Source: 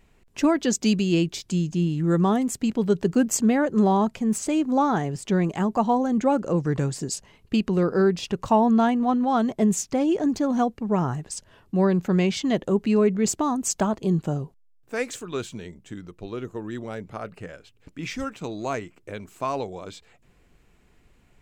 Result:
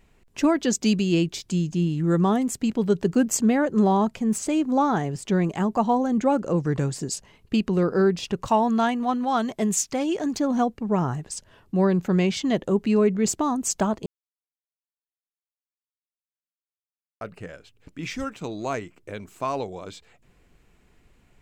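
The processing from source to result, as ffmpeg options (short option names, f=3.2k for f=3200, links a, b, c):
-filter_complex "[0:a]asettb=1/sr,asplit=3[a][b][c];[a]atrim=end=8.474[d];[b]atrim=start=8.47:end=10.4,asetpts=PTS-STARTPTS,afade=t=in:d=0.004:c=qsin,afade=t=out:st=1.926:d=0.004:c=qsin,tiltshelf=f=910:g=-4.5[e];[c]atrim=start=10.396[f];[d][e]acrossfade=d=0.004:c1=hsin:c2=qsin[g];[g][f]acrossfade=d=0.004:c1=qsin:c2=hsin,asplit=3[h][i][j];[h]atrim=end=14.06,asetpts=PTS-STARTPTS,afade=t=out:st=14.056:d=0.004:c=hsin[k];[i]atrim=start=14.06:end=17.21,asetpts=PTS-STARTPTS,volume=0[l];[j]atrim=start=17.21,asetpts=PTS-STARTPTS,afade=t=in:d=0.004:c=hsin[m];[k][l][m]concat=n=3:v=0:a=1"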